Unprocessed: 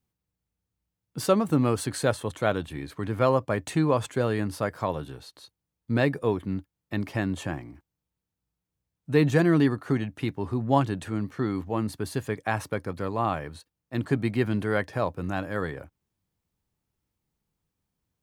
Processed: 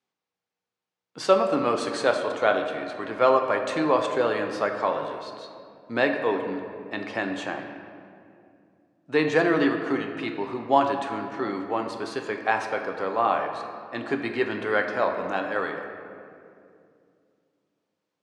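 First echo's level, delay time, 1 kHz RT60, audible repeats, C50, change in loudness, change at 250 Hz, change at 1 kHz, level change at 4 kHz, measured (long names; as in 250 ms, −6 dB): no echo audible, no echo audible, 2.2 s, no echo audible, 6.0 dB, +1.5 dB, −2.5 dB, +5.5 dB, +3.5 dB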